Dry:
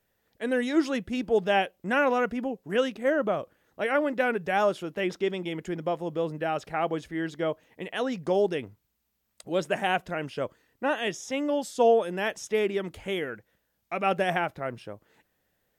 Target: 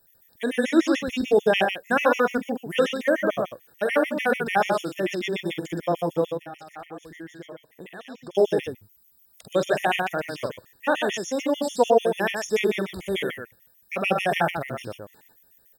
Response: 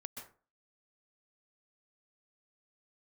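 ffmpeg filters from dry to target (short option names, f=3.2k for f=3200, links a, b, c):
-filter_complex "[0:a]acrossover=split=5600[a][b];[b]acompressor=threshold=-56dB:ratio=4:attack=1:release=60[c];[a][c]amix=inputs=2:normalize=0,aemphasis=mode=production:type=50fm,asettb=1/sr,asplit=3[d][e][f];[d]atrim=end=6.254[g];[e]atrim=start=6.25:end=8.35,asetpts=PTS-STARTPTS,afade=t=in:d=0.004:c=qsin,afade=t=out:st=2.096:d=0.004:c=qsin,acompressor=threshold=-46dB:ratio=3[h];[f]atrim=start=8.346[i];[g][h]acrossfade=d=0.004:c1=hsin:c2=qsin[j];[j][i]acrossfade=d=0.004:c1=qsin:c2=hsin,aecho=1:1:46.65|122.4:0.398|0.562,afftfilt=real='re*gt(sin(2*PI*6.8*pts/sr)*(1-2*mod(floor(b*sr/1024/1800),2)),0)':imag='im*gt(sin(2*PI*6.8*pts/sr)*(1-2*mod(floor(b*sr/1024/1800),2)),0)':win_size=1024:overlap=0.75,volume=5dB"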